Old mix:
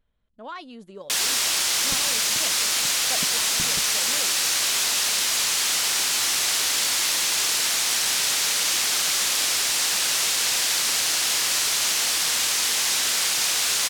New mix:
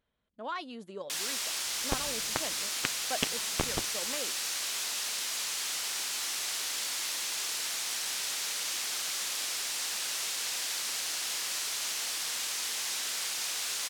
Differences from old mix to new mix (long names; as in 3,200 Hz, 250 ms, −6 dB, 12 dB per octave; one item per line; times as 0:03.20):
first sound −11.5 dB
second sound: remove resonant band-pass 190 Hz, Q 2
master: add high-pass filter 200 Hz 6 dB per octave